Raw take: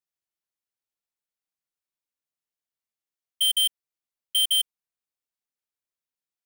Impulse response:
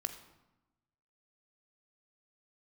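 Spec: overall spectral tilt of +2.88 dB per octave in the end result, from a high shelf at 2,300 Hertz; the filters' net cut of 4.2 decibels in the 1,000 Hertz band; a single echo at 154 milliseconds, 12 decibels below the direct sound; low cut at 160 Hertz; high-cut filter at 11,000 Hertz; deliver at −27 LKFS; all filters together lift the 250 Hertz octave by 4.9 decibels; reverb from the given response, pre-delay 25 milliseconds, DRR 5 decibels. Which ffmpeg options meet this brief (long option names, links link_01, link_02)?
-filter_complex "[0:a]highpass=160,lowpass=11000,equalizer=frequency=250:width_type=o:gain=8.5,equalizer=frequency=1000:width_type=o:gain=-7,highshelf=frequency=2300:gain=4,aecho=1:1:154:0.251,asplit=2[link_01][link_02];[1:a]atrim=start_sample=2205,adelay=25[link_03];[link_02][link_03]afir=irnorm=-1:irlink=0,volume=-5dB[link_04];[link_01][link_04]amix=inputs=2:normalize=0,volume=-3.5dB"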